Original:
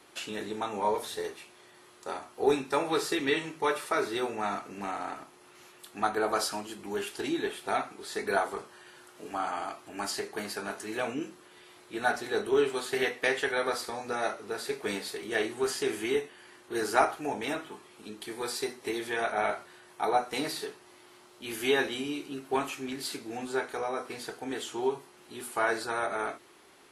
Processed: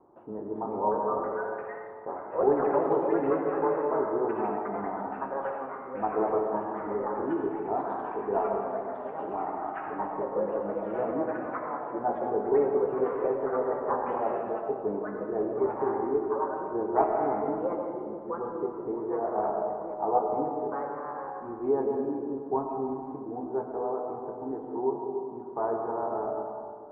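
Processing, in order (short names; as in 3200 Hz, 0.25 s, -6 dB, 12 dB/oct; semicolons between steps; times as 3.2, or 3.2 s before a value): Chebyshev low-pass 1000 Hz, order 4; reverb RT60 2.2 s, pre-delay 75 ms, DRR 2.5 dB; echoes that change speed 0.426 s, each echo +4 st, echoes 3, each echo -6 dB; gain +1 dB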